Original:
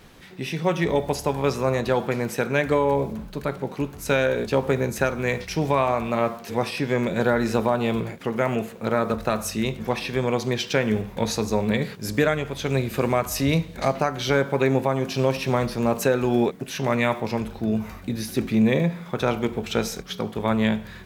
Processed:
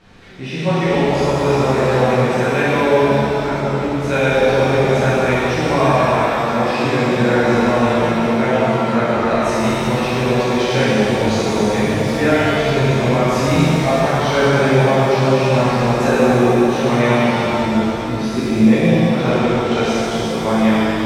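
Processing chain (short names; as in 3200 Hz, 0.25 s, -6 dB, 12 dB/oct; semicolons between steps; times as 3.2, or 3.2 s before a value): air absorption 81 m; shimmer reverb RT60 3.1 s, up +7 st, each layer -8 dB, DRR -11 dB; gain -3 dB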